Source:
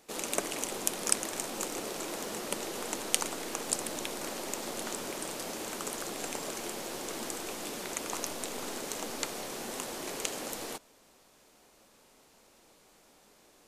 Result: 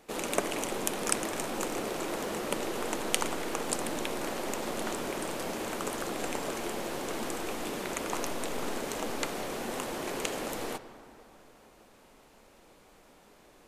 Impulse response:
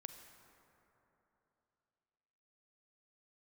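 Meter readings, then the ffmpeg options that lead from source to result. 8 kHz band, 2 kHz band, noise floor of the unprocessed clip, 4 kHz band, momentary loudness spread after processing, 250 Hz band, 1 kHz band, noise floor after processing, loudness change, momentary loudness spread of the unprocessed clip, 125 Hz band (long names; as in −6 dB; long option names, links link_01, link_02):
−2.5 dB, +3.5 dB, −62 dBFS, 0.0 dB, 5 LU, +5.0 dB, +4.5 dB, −59 dBFS, +1.5 dB, 7 LU, +6.0 dB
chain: -filter_complex "[0:a]asplit=2[link_01][link_02];[1:a]atrim=start_sample=2205,lowpass=3600,lowshelf=frequency=90:gain=9.5[link_03];[link_02][link_03]afir=irnorm=-1:irlink=0,volume=5.5dB[link_04];[link_01][link_04]amix=inputs=2:normalize=0,volume=-1.5dB"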